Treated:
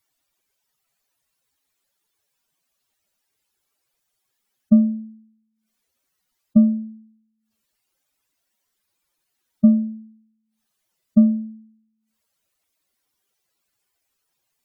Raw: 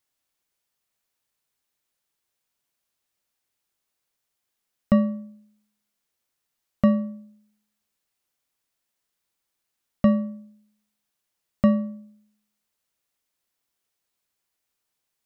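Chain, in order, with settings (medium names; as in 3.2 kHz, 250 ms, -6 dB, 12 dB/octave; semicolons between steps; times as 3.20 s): spectral contrast enhancement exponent 2.4; speed mistake 24 fps film run at 25 fps; trim +5.5 dB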